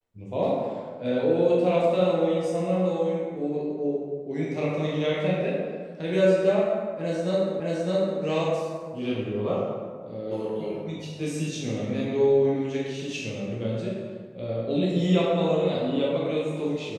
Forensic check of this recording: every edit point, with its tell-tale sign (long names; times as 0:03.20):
0:07.60: the same again, the last 0.61 s